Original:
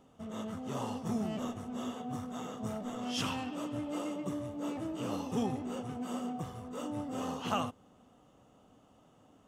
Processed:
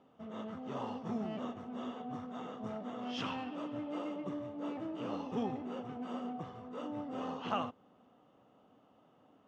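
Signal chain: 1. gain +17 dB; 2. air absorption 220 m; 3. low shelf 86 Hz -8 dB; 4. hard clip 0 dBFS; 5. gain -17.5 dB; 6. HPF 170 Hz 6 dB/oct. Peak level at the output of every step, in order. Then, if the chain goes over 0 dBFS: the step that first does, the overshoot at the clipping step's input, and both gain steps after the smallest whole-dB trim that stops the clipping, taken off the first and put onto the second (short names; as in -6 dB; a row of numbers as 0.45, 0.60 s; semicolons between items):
-1.5, -3.0, -3.0, -3.0, -20.5, -20.5 dBFS; no overload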